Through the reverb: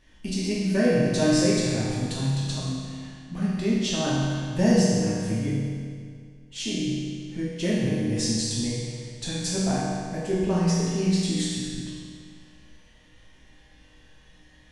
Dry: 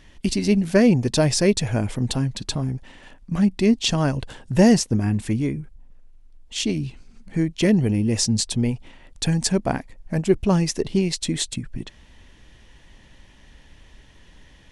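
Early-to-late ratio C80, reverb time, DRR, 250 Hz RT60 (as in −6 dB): 0.0 dB, 2.1 s, −8.0 dB, 2.1 s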